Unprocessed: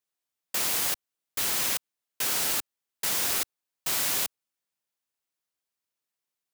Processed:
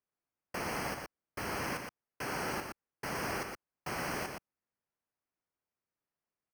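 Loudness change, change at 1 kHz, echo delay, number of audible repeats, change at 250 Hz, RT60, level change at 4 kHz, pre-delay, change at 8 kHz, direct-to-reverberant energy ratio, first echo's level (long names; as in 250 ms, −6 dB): −12.0 dB, +0.5 dB, 119 ms, 1, +3.5 dB, no reverb audible, −14.5 dB, no reverb audible, −18.0 dB, no reverb audible, −5.5 dB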